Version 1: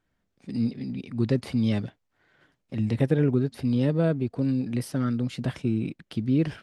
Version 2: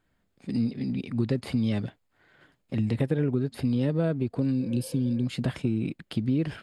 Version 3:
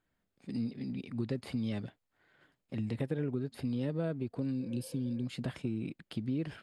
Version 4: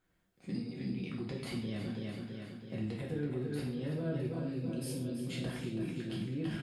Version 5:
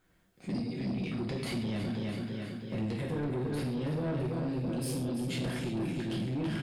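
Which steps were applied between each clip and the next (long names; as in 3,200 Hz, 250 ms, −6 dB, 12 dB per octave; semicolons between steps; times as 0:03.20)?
healed spectral selection 0:04.62–0:05.23, 420–2,500 Hz before; notch filter 5,800 Hz, Q 6.5; downward compressor 3 to 1, threshold −27 dBFS, peak gain reduction 8.5 dB; level +3.5 dB
low-shelf EQ 140 Hz −3.5 dB; level −7.5 dB
repeating echo 329 ms, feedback 58%, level −8 dB; brickwall limiter −32.5 dBFS, peak gain reduction 11.5 dB; reverb whose tail is shaped and stops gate 180 ms falling, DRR −3 dB
soft clipping −36 dBFS, distortion −12 dB; level +7.5 dB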